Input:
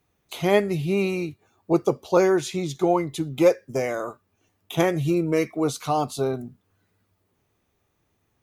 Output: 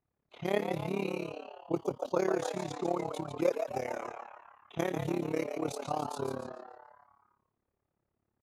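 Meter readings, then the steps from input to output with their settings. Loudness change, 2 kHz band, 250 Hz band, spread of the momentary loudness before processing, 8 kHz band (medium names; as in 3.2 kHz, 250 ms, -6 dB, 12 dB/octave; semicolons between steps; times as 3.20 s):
-11.0 dB, -10.5 dB, -11.5 dB, 11 LU, -11.0 dB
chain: frequency-shifting echo 145 ms, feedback 57%, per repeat +120 Hz, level -7 dB; level-controlled noise filter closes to 1.5 kHz, open at -20 dBFS; AM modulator 35 Hz, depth 80%; trim -8 dB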